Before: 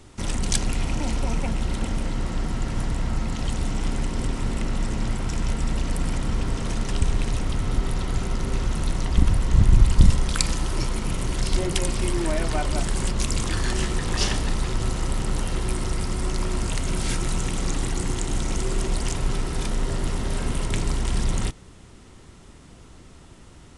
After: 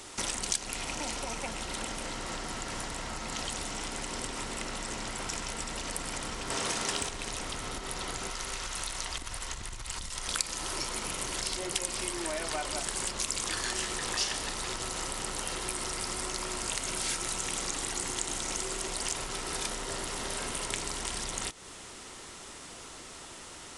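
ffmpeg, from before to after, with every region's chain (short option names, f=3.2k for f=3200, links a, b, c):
-filter_complex "[0:a]asettb=1/sr,asplit=3[a][b][c];[a]atrim=end=6.504[d];[b]atrim=start=6.5:end=7.09,asetpts=PTS-STARTPTS,afade=t=in:d=0.004:c=qsin,afade=t=out:st=0.586:d=0.004:c=qsin,highpass=f=120:p=1,acontrast=78,asplit=2[e][f];[f]adelay=25,volume=-11dB[g];[e][g]amix=inputs=2:normalize=0,atrim=end_sample=26019[h];[c]atrim=start=7.086[i];[d][h]acrossfade=d=0.004:c1=hsin:c2=qsin[j];[j][i]acrossfade=d=0.004:c1=qsin:c2=hsin,asettb=1/sr,asplit=3[k][l][m];[k]atrim=end=8.304[n];[l]atrim=start=8.3:end=10.28,asetpts=PTS-STARTPTS,afade=t=in:d=0.004:c=qsin,afade=t=out:st=1.976:d=0.004:c=qsin,equalizer=f=240:w=0.39:g=-9.5,acompressor=threshold=-18dB:ratio=6:attack=3.2:release=140:knee=1:detection=peak[o];[m]atrim=start=10.276[p];[n][o]acrossfade=d=0.004:c1=hsin:c2=qsin[q];[q][p]acrossfade=d=0.004:c1=qsin:c2=hsin,bass=f=250:g=-7,treble=f=4k:g=4,acompressor=threshold=-35dB:ratio=6,lowshelf=f=340:g=-12,volume=7.5dB"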